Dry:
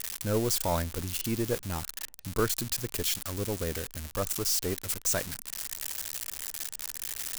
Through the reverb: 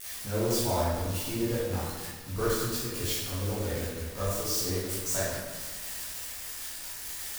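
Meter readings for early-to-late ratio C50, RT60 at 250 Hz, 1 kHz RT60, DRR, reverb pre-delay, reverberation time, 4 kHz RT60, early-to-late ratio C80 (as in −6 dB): −2.5 dB, 1.6 s, 1.5 s, −11.0 dB, 9 ms, 1.5 s, 1.0 s, 1.0 dB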